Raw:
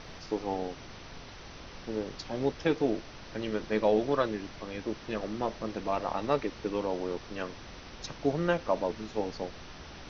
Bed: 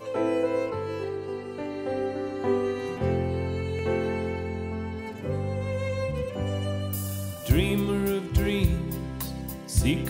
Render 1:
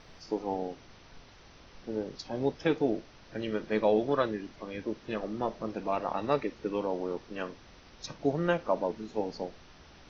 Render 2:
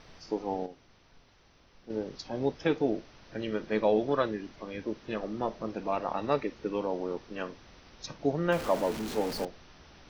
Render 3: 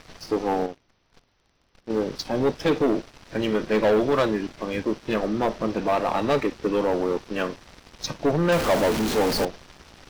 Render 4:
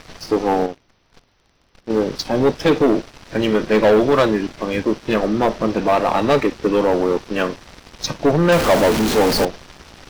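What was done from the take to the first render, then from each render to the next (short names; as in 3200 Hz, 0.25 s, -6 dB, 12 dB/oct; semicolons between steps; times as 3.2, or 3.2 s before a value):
noise print and reduce 8 dB
0.66–1.9 gain -7.5 dB; 8.52–9.45 zero-crossing step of -33.5 dBFS
sample leveller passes 3
gain +6.5 dB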